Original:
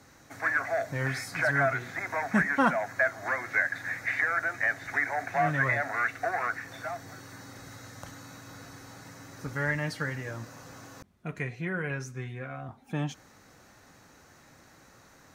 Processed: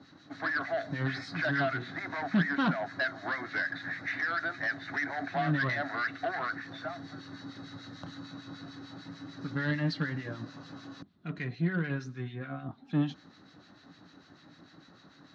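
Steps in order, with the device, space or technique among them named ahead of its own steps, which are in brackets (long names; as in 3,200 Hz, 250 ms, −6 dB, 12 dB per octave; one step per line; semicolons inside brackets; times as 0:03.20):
guitar amplifier with harmonic tremolo (two-band tremolo in antiphase 6.7 Hz, depth 70%, crossover 1,400 Hz; soft clipping −25.5 dBFS, distortion −13 dB; loudspeaker in its box 100–4,500 Hz, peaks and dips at 170 Hz +7 dB, 290 Hz +9 dB, 500 Hz −6 dB, 890 Hz −4 dB, 2,300 Hz −7 dB, 4,000 Hz +9 dB)
level +2.5 dB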